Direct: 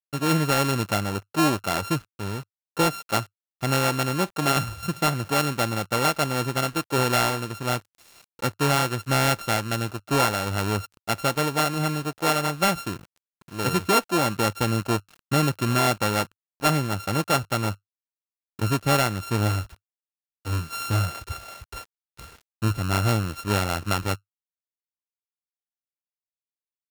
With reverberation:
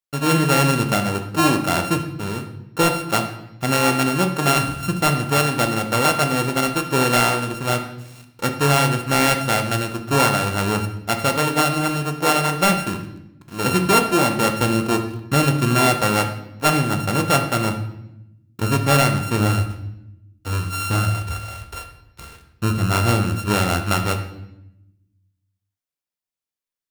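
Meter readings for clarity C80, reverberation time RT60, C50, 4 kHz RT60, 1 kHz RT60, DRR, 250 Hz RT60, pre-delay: 11.5 dB, 0.85 s, 9.0 dB, 0.70 s, 0.80 s, 5.0 dB, 1.3 s, 4 ms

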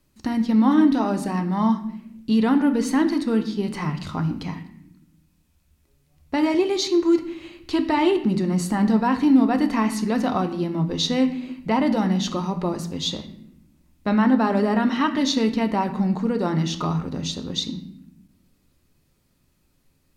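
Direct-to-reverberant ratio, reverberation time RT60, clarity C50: 6.0 dB, 0.80 s, 11.5 dB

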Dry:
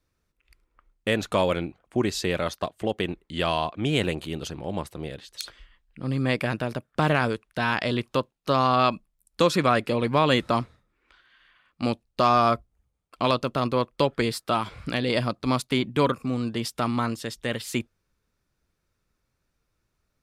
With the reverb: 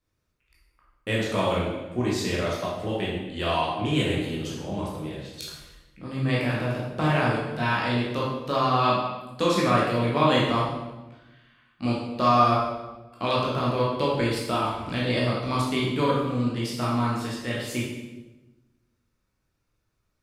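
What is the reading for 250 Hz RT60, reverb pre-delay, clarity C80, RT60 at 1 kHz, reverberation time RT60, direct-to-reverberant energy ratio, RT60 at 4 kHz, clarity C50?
1.4 s, 13 ms, 3.5 dB, 1.0 s, 1.1 s, -6.0 dB, 0.90 s, 0.5 dB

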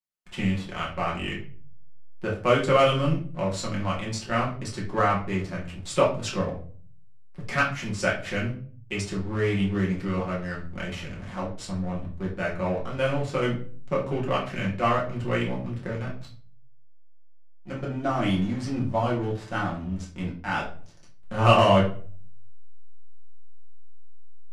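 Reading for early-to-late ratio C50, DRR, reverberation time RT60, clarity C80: 7.5 dB, -5.5 dB, 0.45 s, 13.0 dB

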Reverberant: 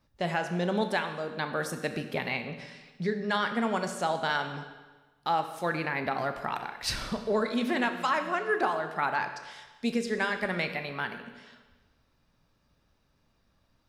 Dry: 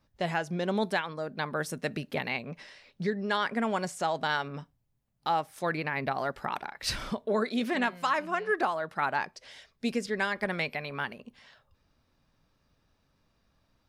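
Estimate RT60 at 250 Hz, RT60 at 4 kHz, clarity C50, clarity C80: 1.3 s, 1.2 s, 8.5 dB, 10.5 dB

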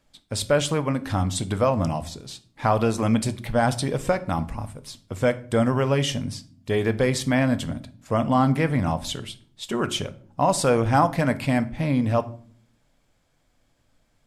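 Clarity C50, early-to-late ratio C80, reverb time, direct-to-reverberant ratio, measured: 17.5 dB, 21.5 dB, 0.50 s, 11.5 dB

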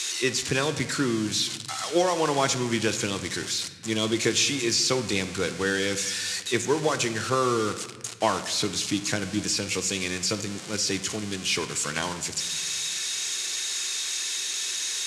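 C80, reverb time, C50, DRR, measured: 13.5 dB, 1.4 s, 11.5 dB, 9.0 dB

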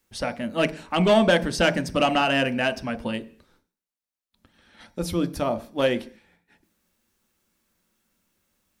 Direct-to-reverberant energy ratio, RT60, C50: 9.0 dB, 0.45 s, 17.0 dB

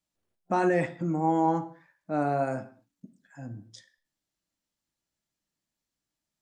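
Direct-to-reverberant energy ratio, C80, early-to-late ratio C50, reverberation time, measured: 9.0 dB, 17.5 dB, 14.5 dB, not exponential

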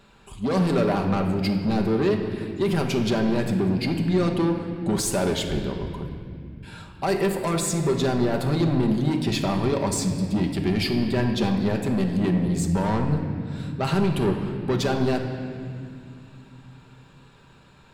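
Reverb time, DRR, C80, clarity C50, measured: 2.3 s, 2.5 dB, 7.0 dB, 6.0 dB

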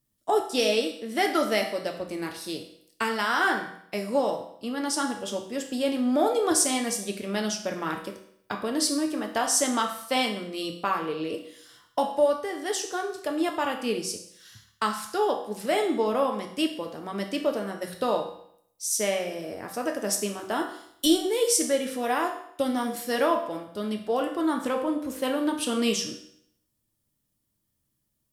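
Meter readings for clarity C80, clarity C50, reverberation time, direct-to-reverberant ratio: 11.0 dB, 8.0 dB, 0.70 s, 2.0 dB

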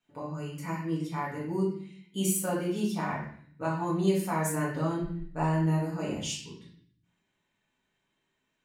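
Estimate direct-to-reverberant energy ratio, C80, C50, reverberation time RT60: -7.0 dB, 7.5 dB, 3.5 dB, 0.55 s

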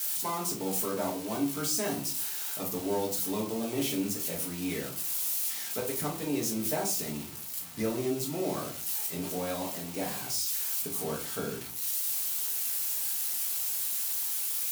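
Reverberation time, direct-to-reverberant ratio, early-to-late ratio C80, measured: 0.40 s, -2.5 dB, 14.5 dB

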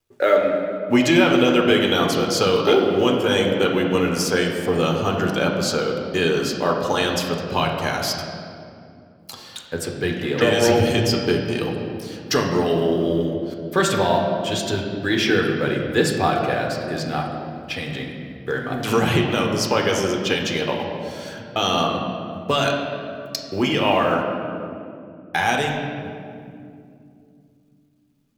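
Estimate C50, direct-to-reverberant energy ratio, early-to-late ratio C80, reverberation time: 3.5 dB, 0.0 dB, 5.0 dB, 2.5 s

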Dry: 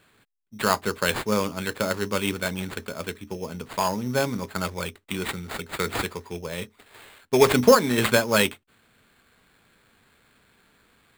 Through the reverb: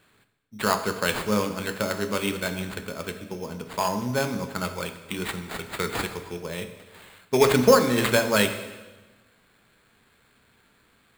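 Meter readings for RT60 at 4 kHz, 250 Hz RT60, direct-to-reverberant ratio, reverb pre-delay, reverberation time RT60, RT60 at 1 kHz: 1.1 s, 1.4 s, 7.5 dB, 14 ms, 1.2 s, 1.2 s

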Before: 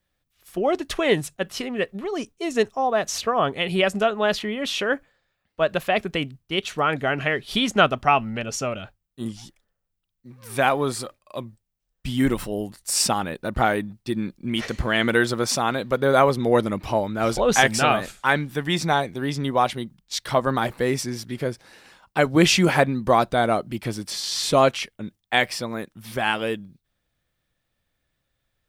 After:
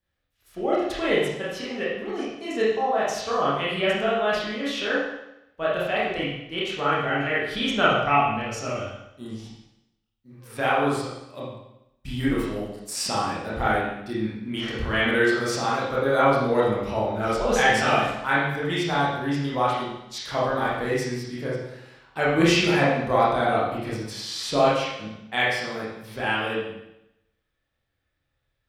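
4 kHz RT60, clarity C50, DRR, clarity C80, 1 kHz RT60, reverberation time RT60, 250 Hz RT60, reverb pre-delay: 0.85 s, 0.0 dB, -8.0 dB, 3.5 dB, 0.85 s, 0.85 s, 0.90 s, 23 ms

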